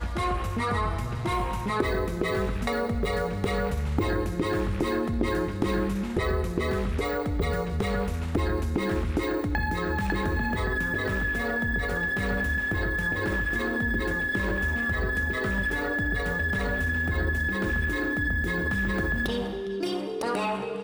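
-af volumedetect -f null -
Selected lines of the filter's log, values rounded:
mean_volume: -27.1 dB
max_volume: -11.4 dB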